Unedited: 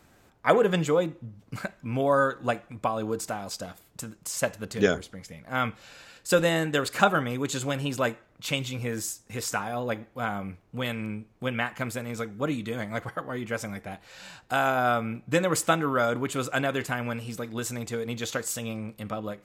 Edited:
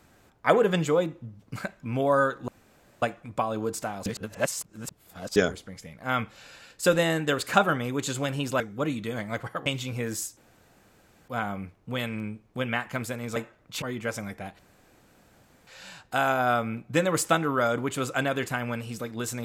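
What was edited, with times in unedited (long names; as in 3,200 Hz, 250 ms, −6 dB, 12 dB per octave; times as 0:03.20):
0:02.48: splice in room tone 0.54 s
0:03.52–0:04.82: reverse
0:08.06–0:08.52: swap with 0:12.22–0:13.28
0:09.23–0:10.14: fill with room tone
0:14.05: splice in room tone 1.08 s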